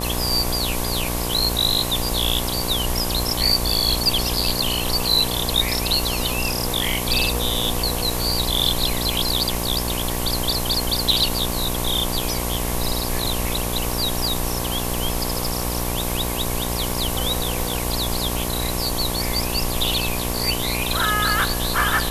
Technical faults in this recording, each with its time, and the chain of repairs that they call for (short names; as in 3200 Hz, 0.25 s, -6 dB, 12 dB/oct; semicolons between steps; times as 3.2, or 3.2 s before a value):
buzz 60 Hz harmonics 19 -27 dBFS
crackle 30/s -29 dBFS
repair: de-click; de-hum 60 Hz, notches 19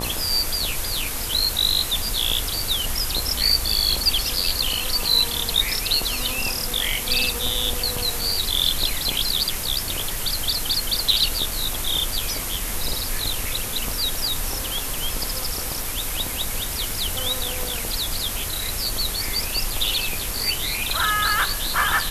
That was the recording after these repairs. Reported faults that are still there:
none